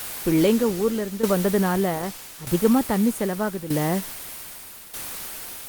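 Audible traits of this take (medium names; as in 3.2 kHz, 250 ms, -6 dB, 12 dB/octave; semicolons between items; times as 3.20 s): a quantiser's noise floor 6-bit, dither triangular; tremolo saw down 0.81 Hz, depth 75%; Opus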